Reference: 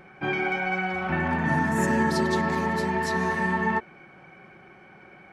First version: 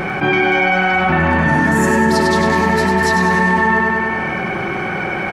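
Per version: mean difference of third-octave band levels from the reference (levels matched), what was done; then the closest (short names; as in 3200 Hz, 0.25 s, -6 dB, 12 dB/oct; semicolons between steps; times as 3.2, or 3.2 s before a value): 6.5 dB: feedback echo 99 ms, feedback 57%, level -5.5 dB; fast leveller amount 70%; gain +6.5 dB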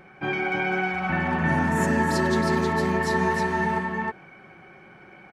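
2.5 dB: echo 0.315 s -3.5 dB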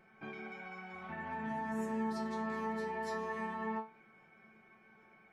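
4.0 dB: compressor, threshold -28 dBFS, peak gain reduction 9 dB; resonator 220 Hz, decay 0.27 s, harmonics all, mix 90%; gain -1.5 dB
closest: second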